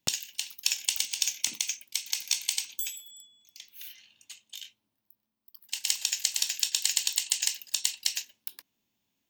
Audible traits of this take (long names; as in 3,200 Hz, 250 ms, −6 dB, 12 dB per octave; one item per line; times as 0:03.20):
background noise floor −82 dBFS
spectral slope +2.0 dB per octave